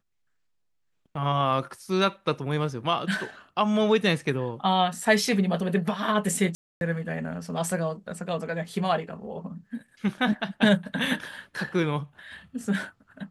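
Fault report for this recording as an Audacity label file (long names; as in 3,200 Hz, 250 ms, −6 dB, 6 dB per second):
6.550000	6.810000	drop-out 261 ms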